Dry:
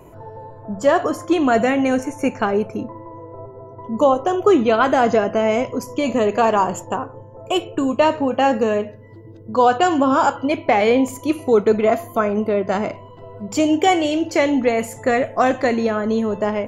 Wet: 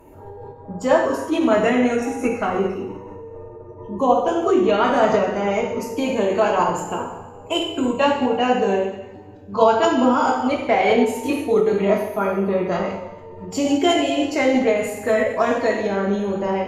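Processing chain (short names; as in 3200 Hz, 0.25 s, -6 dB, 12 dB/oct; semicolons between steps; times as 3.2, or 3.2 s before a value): two-slope reverb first 0.83 s, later 2.2 s, DRR -2 dB; formant-preserving pitch shift -1.5 st; gain -5 dB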